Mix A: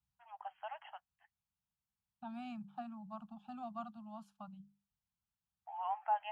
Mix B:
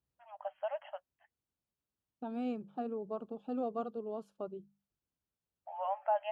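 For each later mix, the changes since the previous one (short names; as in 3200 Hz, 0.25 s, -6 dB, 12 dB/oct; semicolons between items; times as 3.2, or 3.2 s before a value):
master: remove elliptic band-stop 210–780 Hz, stop band 60 dB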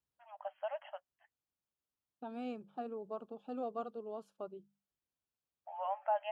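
master: add low shelf 400 Hz -8.5 dB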